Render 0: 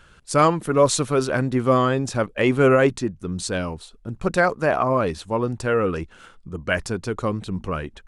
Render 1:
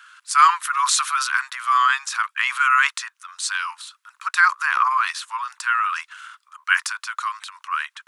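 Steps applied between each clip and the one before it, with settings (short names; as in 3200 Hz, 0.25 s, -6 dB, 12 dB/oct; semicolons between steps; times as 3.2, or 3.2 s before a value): steep high-pass 1000 Hz 72 dB/oct; bell 1400 Hz +4 dB 0.63 oct; transient shaper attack 0 dB, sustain +7 dB; gain +4 dB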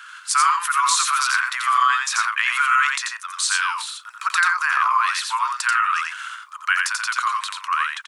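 compressor 3:1, threshold -26 dBFS, peak gain reduction 13.5 dB; tapped delay 87/123 ms -3/-18.5 dB; gain +6.5 dB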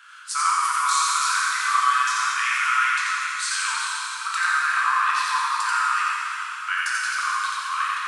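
plate-style reverb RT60 3.5 s, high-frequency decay 1×, DRR -6 dB; gain -9 dB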